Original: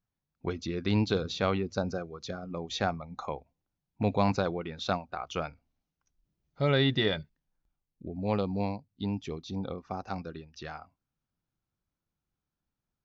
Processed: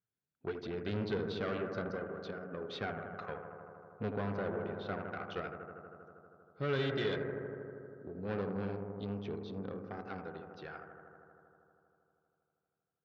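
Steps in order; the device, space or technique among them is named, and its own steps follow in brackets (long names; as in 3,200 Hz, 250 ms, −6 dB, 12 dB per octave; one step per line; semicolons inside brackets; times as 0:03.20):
analogue delay pedal into a guitar amplifier (bucket-brigade delay 79 ms, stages 1,024, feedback 84%, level −9 dB; tube saturation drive 28 dB, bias 0.7; loudspeaker in its box 100–4,300 Hz, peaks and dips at 120 Hz +4 dB, 420 Hz +8 dB, 900 Hz −4 dB, 1,500 Hz +7 dB)
0:04.14–0:04.99: high-shelf EQ 3,000 Hz −10.5 dB
level −4.5 dB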